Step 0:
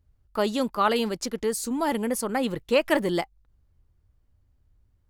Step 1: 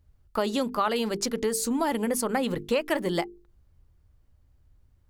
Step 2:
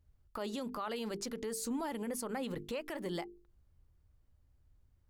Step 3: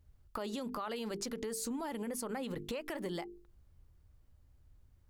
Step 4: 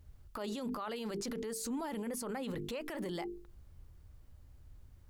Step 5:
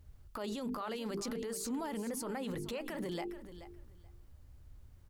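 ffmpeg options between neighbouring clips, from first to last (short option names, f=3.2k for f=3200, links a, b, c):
-af "bandreject=f=50:t=h:w=6,bandreject=f=100:t=h:w=6,bandreject=f=150:t=h:w=6,bandreject=f=200:t=h:w=6,bandreject=f=250:t=h:w=6,bandreject=f=300:t=h:w=6,bandreject=f=350:t=h:w=6,bandreject=f=400:t=h:w=6,bandreject=f=450:t=h:w=6,acompressor=threshold=-27dB:ratio=4,volume=4dB"
-af "alimiter=limit=-22.5dB:level=0:latency=1:release=83,volume=-7dB"
-af "acompressor=threshold=-40dB:ratio=6,volume=4.5dB"
-af "alimiter=level_in=14.5dB:limit=-24dB:level=0:latency=1:release=22,volume=-14.5dB,volume=7dB"
-af "aecho=1:1:430|860:0.224|0.0358"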